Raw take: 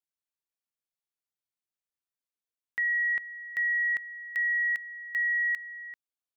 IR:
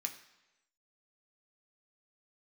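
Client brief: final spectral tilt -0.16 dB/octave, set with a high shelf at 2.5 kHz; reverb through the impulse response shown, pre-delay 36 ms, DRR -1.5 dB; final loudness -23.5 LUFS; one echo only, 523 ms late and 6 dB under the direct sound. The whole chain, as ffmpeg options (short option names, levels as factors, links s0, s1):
-filter_complex "[0:a]highshelf=f=2500:g=7,aecho=1:1:523:0.501,asplit=2[s0][s1];[1:a]atrim=start_sample=2205,adelay=36[s2];[s1][s2]afir=irnorm=-1:irlink=0,volume=1.26[s3];[s0][s3]amix=inputs=2:normalize=0,volume=1.12"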